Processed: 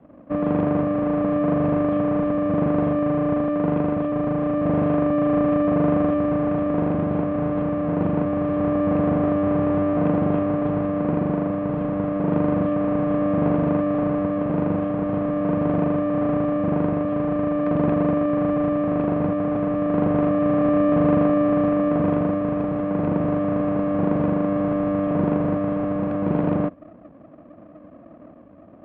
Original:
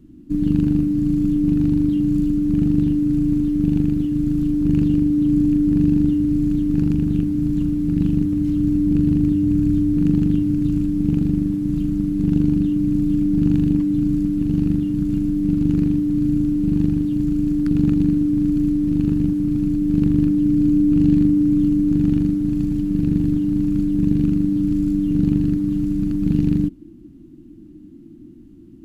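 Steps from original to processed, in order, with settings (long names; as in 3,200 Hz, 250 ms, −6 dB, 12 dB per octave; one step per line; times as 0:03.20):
lower of the sound and its delayed copy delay 1.2 ms
loudspeaker in its box 120–2,600 Hz, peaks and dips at 130 Hz −5 dB, 320 Hz +4 dB, 470 Hz −4 dB, 740 Hz +8 dB, 1,200 Hz +5 dB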